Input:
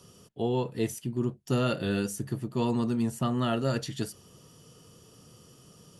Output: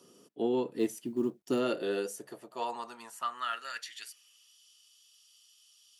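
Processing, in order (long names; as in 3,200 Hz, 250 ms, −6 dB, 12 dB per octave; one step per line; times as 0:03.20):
harmonic generator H 3 −26 dB, 4 −42 dB, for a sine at −15.5 dBFS
high-pass filter sweep 290 Hz → 3,300 Hz, 0:01.48–0:04.59
0:00.79–0:01.60: log-companded quantiser 8 bits
level −4 dB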